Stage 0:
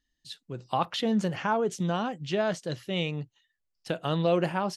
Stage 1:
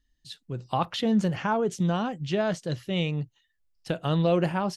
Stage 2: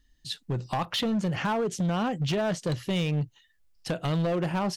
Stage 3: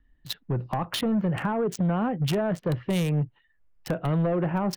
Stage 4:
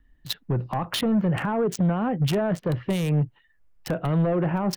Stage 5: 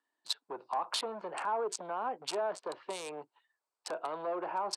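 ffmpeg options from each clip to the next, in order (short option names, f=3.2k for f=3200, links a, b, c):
-af "lowshelf=f=130:g=11.5"
-af "acompressor=threshold=-30dB:ratio=8,asoftclip=type=hard:threshold=-30.5dB,volume=7.5dB"
-filter_complex "[0:a]acrossover=split=470[a][b];[b]acompressor=threshold=-29dB:ratio=10[c];[a][c]amix=inputs=2:normalize=0,acrossover=split=500|2300[d][e][f];[f]acrusher=bits=4:mix=0:aa=0.5[g];[d][e][g]amix=inputs=3:normalize=0,volume=2.5dB"
-af "alimiter=limit=-20dB:level=0:latency=1:release=38,volume=3.5dB"
-af "highpass=f=430:w=0.5412,highpass=f=430:w=1.3066,equalizer=f=520:t=q:w=4:g=-5,equalizer=f=960:t=q:w=4:g=7,equalizer=f=1.9k:t=q:w=4:g=-9,equalizer=f=3k:t=q:w=4:g=-5,equalizer=f=4.5k:t=q:w=4:g=6,equalizer=f=8.1k:t=q:w=4:g=8,lowpass=f=9.7k:w=0.5412,lowpass=f=9.7k:w=1.3066,volume=-6dB"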